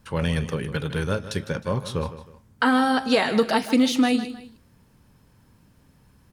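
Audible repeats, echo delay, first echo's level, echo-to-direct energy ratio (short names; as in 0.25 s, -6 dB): 2, 0.156 s, -13.5 dB, -13.0 dB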